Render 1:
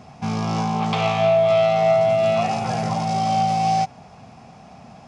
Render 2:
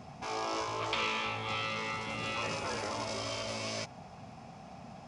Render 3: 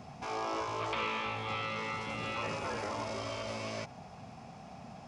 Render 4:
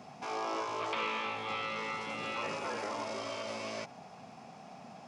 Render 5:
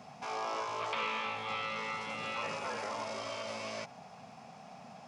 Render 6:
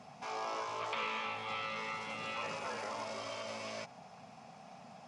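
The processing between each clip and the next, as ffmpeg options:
ffmpeg -i in.wav -af "afftfilt=real='re*lt(hypot(re,im),0.224)':imag='im*lt(hypot(re,im),0.224)':win_size=1024:overlap=0.75,volume=-5dB" out.wav
ffmpeg -i in.wav -filter_complex "[0:a]acrossover=split=2600[link_01][link_02];[link_02]acompressor=threshold=-46dB:ratio=4:attack=1:release=60[link_03];[link_01][link_03]amix=inputs=2:normalize=0" out.wav
ffmpeg -i in.wav -af "highpass=200" out.wav
ffmpeg -i in.wav -af "equalizer=frequency=330:width_type=o:width=0.52:gain=-10" out.wav
ffmpeg -i in.wav -af "volume=-2dB" -ar 48000 -c:a libmp3lame -b:a 56k out.mp3

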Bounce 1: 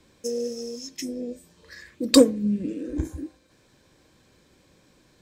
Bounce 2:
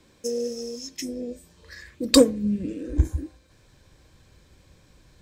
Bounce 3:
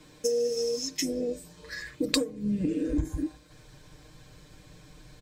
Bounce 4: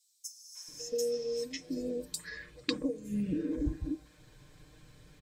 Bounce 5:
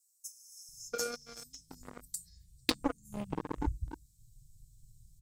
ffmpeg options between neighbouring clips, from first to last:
ffmpeg -i in.wav -af "asubboost=boost=5:cutoff=110,volume=1dB" out.wav
ffmpeg -i in.wav -af "aecho=1:1:6.6:0.79,acompressor=threshold=-26dB:ratio=16,volume=2.5dB" out.wav
ffmpeg -i in.wav -filter_complex "[0:a]acrossover=split=770|5300[link_01][link_02][link_03];[link_02]adelay=550[link_04];[link_01]adelay=680[link_05];[link_05][link_04][link_03]amix=inputs=3:normalize=0,volume=-4.5dB" out.wav
ffmpeg -i in.wav -filter_complex "[0:a]flanger=delay=8.3:depth=2.5:regen=-73:speed=1.5:shape=triangular,acrossover=split=120|6500[link_01][link_02][link_03];[link_02]acrusher=bits=4:mix=0:aa=0.5[link_04];[link_01][link_04][link_03]amix=inputs=3:normalize=0,volume=7dB" out.wav

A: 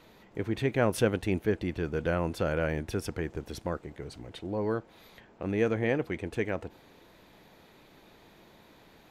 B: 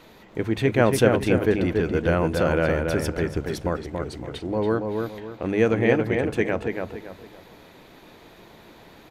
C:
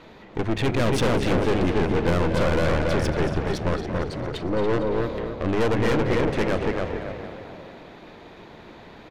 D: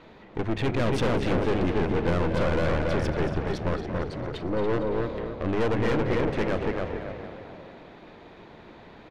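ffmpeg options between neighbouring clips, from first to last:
ffmpeg -i in.wav -filter_complex "[0:a]bandreject=frequency=50:width_type=h:width=6,bandreject=frequency=100:width_type=h:width=6,bandreject=frequency=150:width_type=h:width=6,bandreject=frequency=200:width_type=h:width=6,asplit=2[link_01][link_02];[link_02]adelay=281,lowpass=frequency=2500:poles=1,volume=-4dB,asplit=2[link_03][link_04];[link_04]adelay=281,lowpass=frequency=2500:poles=1,volume=0.34,asplit=2[link_05][link_06];[link_06]adelay=281,lowpass=frequency=2500:poles=1,volume=0.34,asplit=2[link_07][link_08];[link_08]adelay=281,lowpass=frequency=2500:poles=1,volume=0.34[link_09];[link_03][link_05][link_07][link_09]amix=inputs=4:normalize=0[link_10];[link_01][link_10]amix=inputs=2:normalize=0,volume=7dB" out.wav
ffmpeg -i in.wav -filter_complex "[0:a]aeval=exprs='(tanh(22.4*val(0)+0.7)-tanh(0.7))/22.4':channel_layout=same,asplit=8[link_01][link_02][link_03][link_04][link_05][link_06][link_07][link_08];[link_02]adelay=229,afreqshift=34,volume=-9.5dB[link_09];[link_03]adelay=458,afreqshift=68,volume=-14.1dB[link_10];[link_04]adelay=687,afreqshift=102,volume=-18.7dB[link_11];[link_05]adelay=916,afreqshift=136,volume=-23.2dB[link_12];[link_06]adelay=1145,afreqshift=170,volume=-27.8dB[link_13];[link_07]adelay=1374,afreqshift=204,volume=-32.4dB[link_14];[link_08]adelay=1603,afreqshift=238,volume=-37dB[link_15];[link_01][link_09][link_10][link_11][link_12][link_13][link_14][link_15]amix=inputs=8:normalize=0,adynamicsmooth=sensitivity=5.5:basefreq=4800,volume=7.5dB" out.wav
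ffmpeg -i in.wav -af "highshelf=frequency=6800:gain=-11,volume=-3dB" out.wav

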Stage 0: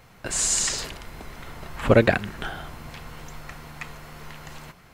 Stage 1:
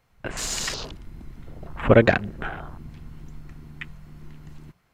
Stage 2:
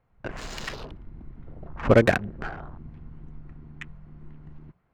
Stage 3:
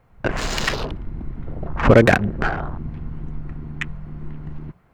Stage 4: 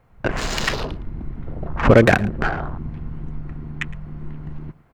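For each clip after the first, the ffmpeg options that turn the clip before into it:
ffmpeg -i in.wav -filter_complex "[0:a]acrossover=split=5700[link_01][link_02];[link_02]acompressor=threshold=-42dB:ratio=4:attack=1:release=60[link_03];[link_01][link_03]amix=inputs=2:normalize=0,afwtdn=0.0178,volume=1.5dB" out.wav
ffmpeg -i in.wav -af "adynamicsmooth=sensitivity=2:basefreq=1700,volume=-2dB" out.wav
ffmpeg -i in.wav -af "alimiter=level_in=13.5dB:limit=-1dB:release=50:level=0:latency=1,volume=-1dB" out.wav
ffmpeg -i in.wav -af "aecho=1:1:112:0.0944" out.wav

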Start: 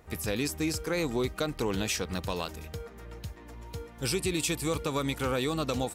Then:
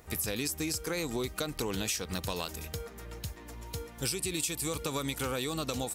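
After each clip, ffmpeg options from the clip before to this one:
ffmpeg -i in.wav -af "highshelf=frequency=4200:gain=10.5,acompressor=threshold=-30dB:ratio=5" out.wav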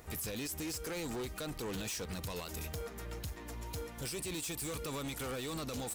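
ffmpeg -i in.wav -af "alimiter=level_in=2dB:limit=-24dB:level=0:latency=1:release=77,volume=-2dB,asoftclip=type=hard:threshold=-37.5dB,volume=1dB" out.wav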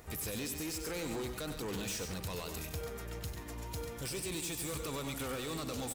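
ffmpeg -i in.wav -af "aecho=1:1:96.21|137:0.398|0.282" out.wav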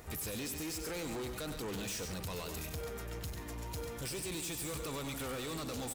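ffmpeg -i in.wav -af "asoftclip=type=tanh:threshold=-38.5dB,volume=2.5dB" out.wav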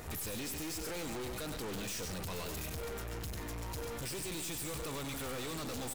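ffmpeg -i in.wav -af "aeval=exprs='(tanh(224*val(0)+0.3)-tanh(0.3))/224':channel_layout=same,volume=8dB" out.wav

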